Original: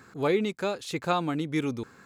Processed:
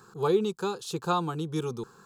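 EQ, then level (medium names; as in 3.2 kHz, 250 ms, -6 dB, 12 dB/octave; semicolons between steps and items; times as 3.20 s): peaking EQ 200 Hz -2 dB; static phaser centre 410 Hz, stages 8; +2.5 dB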